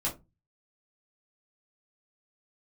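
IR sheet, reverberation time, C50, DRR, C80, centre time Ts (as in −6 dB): 0.20 s, 13.5 dB, −4.5 dB, 21.0 dB, 18 ms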